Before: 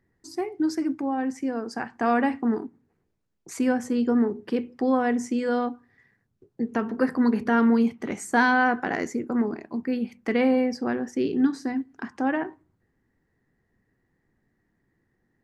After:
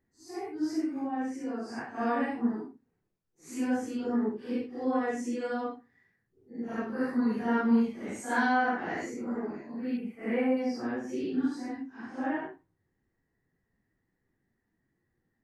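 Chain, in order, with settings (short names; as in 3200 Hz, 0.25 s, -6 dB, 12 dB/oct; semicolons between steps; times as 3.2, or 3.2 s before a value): phase scrambler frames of 0.2 s; 9.97–10.57 band shelf 4800 Hz -14 dB 1.2 oct; gain -6.5 dB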